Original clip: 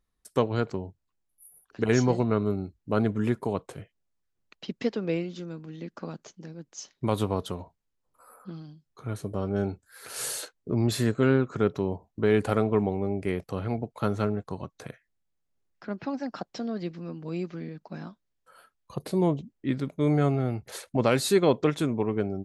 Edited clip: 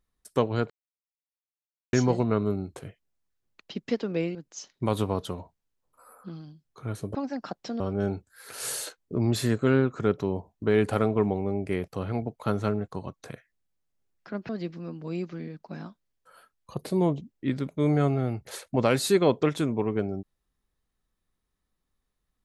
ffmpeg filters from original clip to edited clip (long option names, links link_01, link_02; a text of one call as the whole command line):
ffmpeg -i in.wav -filter_complex "[0:a]asplit=8[link_01][link_02][link_03][link_04][link_05][link_06][link_07][link_08];[link_01]atrim=end=0.7,asetpts=PTS-STARTPTS,afade=type=out:start_time=0.696:duration=0.004:curve=hsin[link_09];[link_02]atrim=start=0.7:end=1.93,asetpts=PTS-STARTPTS,volume=0[link_10];[link_03]atrim=start=1.93:end=2.762,asetpts=PTS-STARTPTS,afade=type=in:duration=0.004:curve=hsin[link_11];[link_04]atrim=start=3.688:end=5.282[link_12];[link_05]atrim=start=6.558:end=9.362[link_13];[link_06]atrim=start=16.048:end=16.702[link_14];[link_07]atrim=start=9.358:end=16.052[link_15];[link_08]atrim=start=16.698[link_16];[link_09][link_10][link_11]concat=n=3:v=0:a=1[link_17];[link_17][link_12]acrossfade=duration=0.004:curve1=hsin:curve2=hsin[link_18];[link_18][link_13]acrossfade=duration=0.004:curve1=hsin:curve2=hsin[link_19];[link_19][link_14]acrossfade=duration=0.004:curve1=hsin:curve2=hsin[link_20];[link_20][link_15]acrossfade=duration=0.004:curve1=hsin:curve2=hsin[link_21];[link_21][link_16]acrossfade=duration=0.004:curve1=hsin:curve2=hsin" out.wav